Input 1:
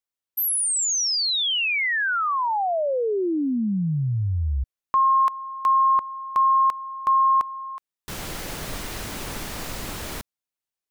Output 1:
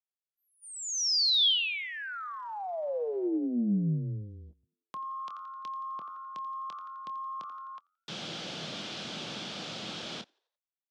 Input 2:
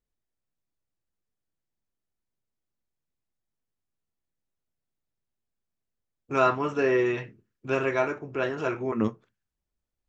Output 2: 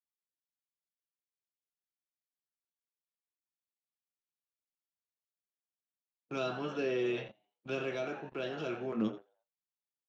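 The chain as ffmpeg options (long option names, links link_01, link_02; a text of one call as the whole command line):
ffmpeg -i in.wav -filter_complex "[0:a]highpass=frequency=160:width=0.5412,highpass=frequency=160:width=1.3066,equalizer=frequency=270:width_type=q:width=4:gain=-6,equalizer=frequency=410:width_type=q:width=4:gain=-6,equalizer=frequency=1000:width_type=q:width=4:gain=-8,equalizer=frequency=1900:width_type=q:width=4:gain=-8,equalizer=frequency=3300:width_type=q:width=4:gain=7,lowpass=frequency=5300:width=0.5412,lowpass=frequency=5300:width=1.3066,asplit=2[link_01][link_02];[link_02]adelay=25,volume=-13dB[link_03];[link_01][link_03]amix=inputs=2:normalize=0,asplit=5[link_04][link_05][link_06][link_07][link_08];[link_05]adelay=86,afreqshift=90,volume=-16dB[link_09];[link_06]adelay=172,afreqshift=180,volume=-22.9dB[link_10];[link_07]adelay=258,afreqshift=270,volume=-29.9dB[link_11];[link_08]adelay=344,afreqshift=360,volume=-36.8dB[link_12];[link_04][link_09][link_10][link_11][link_12]amix=inputs=5:normalize=0,agate=range=-17dB:threshold=-48dB:ratio=16:release=28:detection=rms,acrossover=split=450|3300[link_13][link_14][link_15];[link_14]acompressor=threshold=-37dB:ratio=5:attack=0.11:release=41:knee=2.83:detection=peak[link_16];[link_13][link_16][link_15]amix=inputs=3:normalize=0,volume=-2dB" out.wav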